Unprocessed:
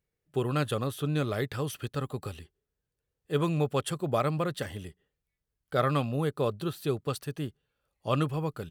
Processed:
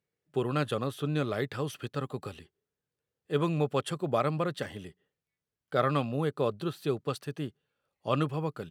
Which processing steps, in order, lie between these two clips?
high-pass 130 Hz 12 dB/octave; treble shelf 8.6 kHz -11 dB

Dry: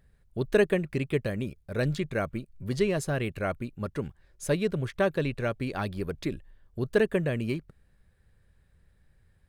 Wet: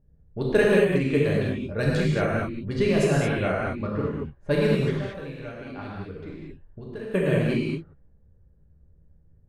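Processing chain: level-controlled noise filter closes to 470 Hz, open at -23 dBFS; 4.90–7.14 s: compression 5:1, threshold -40 dBFS, peak gain reduction 19.5 dB; gated-style reverb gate 250 ms flat, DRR -5 dB

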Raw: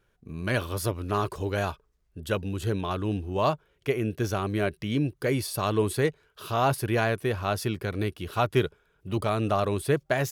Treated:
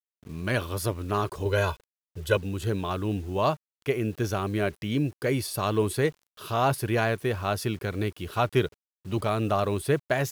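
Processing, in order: 1.45–2.37 s: comb 2 ms, depth 99%; bit crusher 9-bit

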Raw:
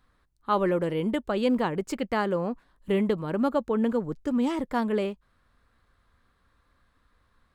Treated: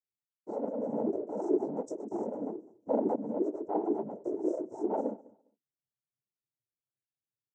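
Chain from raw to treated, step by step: gate -57 dBFS, range -29 dB; Chebyshev band-stop 430–5100 Hz, order 5; hum notches 60/120/180/240/300/360 Hz; pitch shift +6.5 st; chorus 2.6 Hz, delay 16.5 ms, depth 5.7 ms; noise-vocoded speech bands 12; on a send: feedback delay 203 ms, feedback 18%, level -23 dB

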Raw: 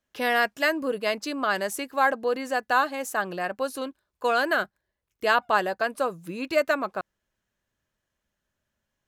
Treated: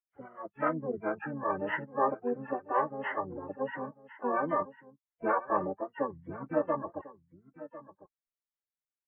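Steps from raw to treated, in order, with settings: knee-point frequency compression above 1.1 kHz 4:1; spectral noise reduction 27 dB; bass shelf 140 Hz -2 dB; delay 1049 ms -16.5 dB; harmony voices -12 st -4 dB, -4 st -7 dB, +7 st -16 dB; trim -7.5 dB

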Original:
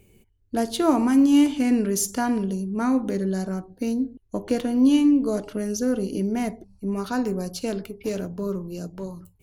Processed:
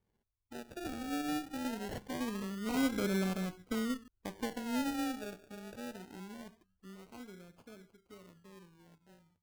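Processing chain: Doppler pass-by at 3.25 s, 13 m/s, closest 6.1 m; Chebyshev shaper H 6 -21 dB, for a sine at -15.5 dBFS; decimation with a swept rate 33×, swing 60% 0.23 Hz; trim -7 dB

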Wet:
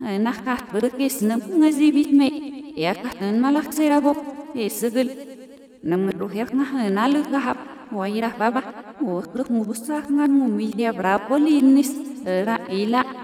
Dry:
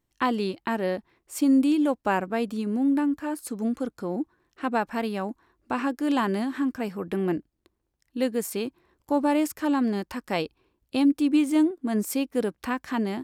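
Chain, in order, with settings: reverse the whole clip; modulated delay 107 ms, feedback 74%, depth 123 cents, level -16 dB; trim +5 dB

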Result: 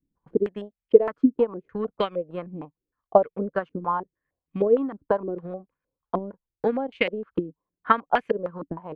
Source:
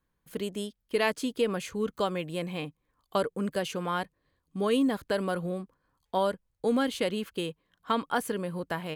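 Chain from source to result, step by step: transient shaper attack +11 dB, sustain -10 dB; step-sequenced low-pass 6.5 Hz 280–2400 Hz; trim -4.5 dB

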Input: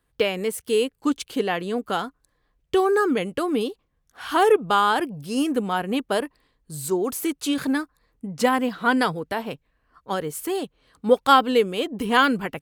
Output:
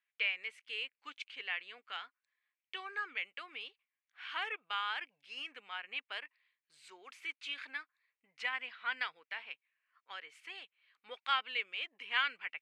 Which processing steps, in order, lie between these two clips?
resonant high-pass 2.3 kHz, resonance Q 3.5; tape spacing loss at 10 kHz 33 dB; trim -5 dB; AAC 128 kbps 44.1 kHz

